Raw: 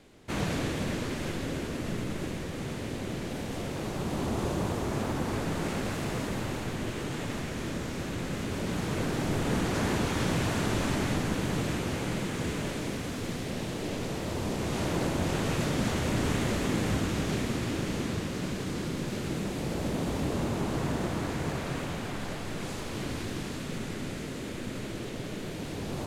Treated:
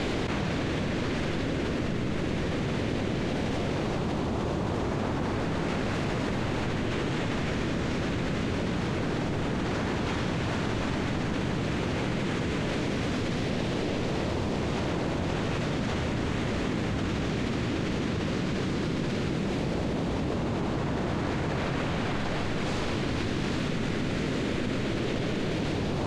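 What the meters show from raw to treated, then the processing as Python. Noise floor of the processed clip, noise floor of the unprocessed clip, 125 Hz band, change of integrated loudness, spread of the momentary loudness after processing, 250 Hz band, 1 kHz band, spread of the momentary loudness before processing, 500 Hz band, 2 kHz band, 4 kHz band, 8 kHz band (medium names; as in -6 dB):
-30 dBFS, -37 dBFS, +2.5 dB, +2.5 dB, 0 LU, +2.5 dB, +2.5 dB, 7 LU, +3.0 dB, +3.0 dB, +2.0 dB, -4.5 dB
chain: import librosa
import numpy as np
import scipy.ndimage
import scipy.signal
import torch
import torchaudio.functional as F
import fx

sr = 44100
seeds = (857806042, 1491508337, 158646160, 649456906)

y = scipy.signal.sosfilt(scipy.signal.butter(2, 4900.0, 'lowpass', fs=sr, output='sos'), x)
y = fx.env_flatten(y, sr, amount_pct=100)
y = y * librosa.db_to_amplitude(-3.0)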